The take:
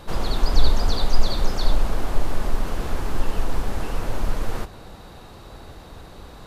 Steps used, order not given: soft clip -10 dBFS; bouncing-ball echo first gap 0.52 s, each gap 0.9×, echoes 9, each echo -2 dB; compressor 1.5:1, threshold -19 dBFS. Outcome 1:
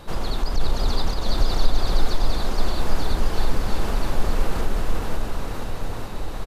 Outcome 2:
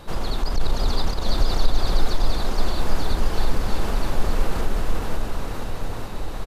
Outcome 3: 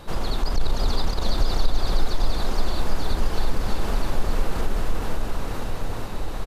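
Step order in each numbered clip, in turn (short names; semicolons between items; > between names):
compressor > soft clip > bouncing-ball echo; soft clip > compressor > bouncing-ball echo; soft clip > bouncing-ball echo > compressor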